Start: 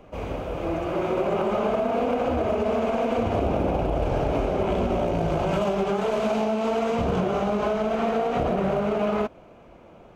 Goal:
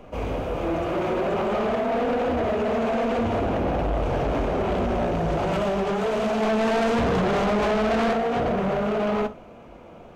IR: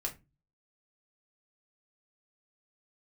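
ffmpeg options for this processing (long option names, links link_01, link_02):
-filter_complex "[0:a]asettb=1/sr,asplit=3[link_01][link_02][link_03];[link_01]atrim=end=6.424[link_04];[link_02]atrim=start=6.42:end=8.13,asetpts=PTS-STARTPTS,afade=type=in:duration=0.004:curve=qsin,afade=type=out:start_time=1.706:duration=0.004:curve=qsin,acontrast=59[link_05];[link_03]atrim=start=8.126[link_06];[link_04][link_05]acrossfade=duration=0.004:curve1=hsin:curve2=qsin[link_07];[link_07][link_06]acrossfade=duration=0.004:curve1=qsin:curve2=hsin,asplit=2[link_08][link_09];[1:a]atrim=start_sample=2205,asetrate=30870,aresample=44100[link_10];[link_09][link_10]afir=irnorm=-1:irlink=0,volume=-10.5dB[link_11];[link_08][link_11]amix=inputs=2:normalize=0,asoftclip=type=tanh:threshold=-21dB,volume=1.5dB"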